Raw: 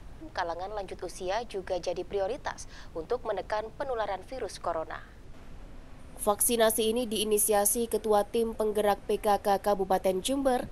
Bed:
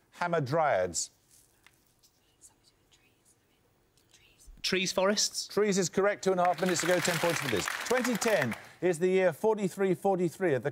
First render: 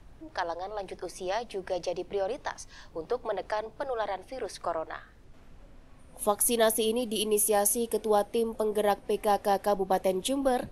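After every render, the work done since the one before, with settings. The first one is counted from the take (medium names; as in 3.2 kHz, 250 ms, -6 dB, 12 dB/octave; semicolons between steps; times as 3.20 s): noise print and reduce 6 dB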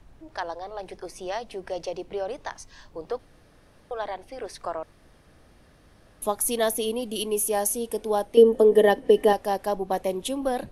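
3.19–3.91 s: room tone; 4.83–6.22 s: room tone; 8.37–9.33 s: small resonant body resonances 280/450/1800/3000 Hz, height 15 dB, ringing for 35 ms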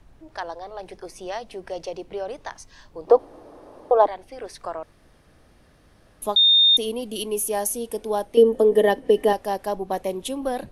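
3.07–4.07 s: high-order bell 550 Hz +16 dB 2.4 oct; 6.36–6.77 s: bleep 3.65 kHz -12 dBFS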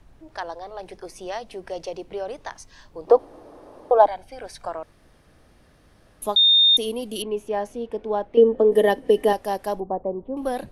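3.98–4.69 s: comb 1.3 ms, depth 48%; 7.22–8.72 s: low-pass 2.4 kHz; 9.80–10.37 s: low-pass 1 kHz 24 dB/octave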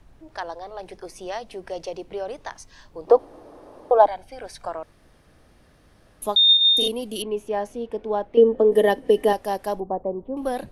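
6.45–6.88 s: flutter echo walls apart 6.8 m, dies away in 1.3 s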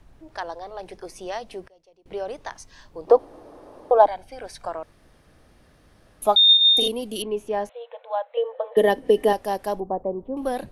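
1.62–2.06 s: inverted gate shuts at -37 dBFS, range -25 dB; 6.25–6.80 s: small resonant body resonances 740/1300/2300 Hz, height 14 dB, ringing for 20 ms; 7.69–8.77 s: brick-wall FIR band-pass 470–4200 Hz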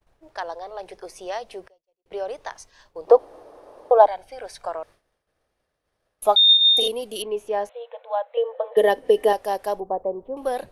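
expander -43 dBFS; resonant low shelf 350 Hz -7 dB, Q 1.5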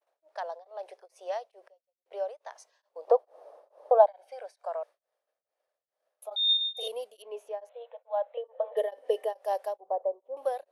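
ladder high-pass 510 Hz, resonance 55%; tremolo of two beating tones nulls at 2.3 Hz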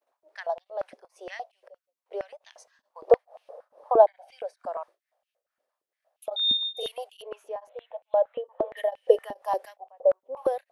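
step-sequenced high-pass 8.6 Hz 250–2800 Hz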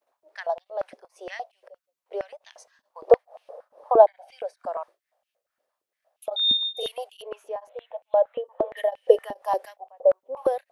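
trim +2.5 dB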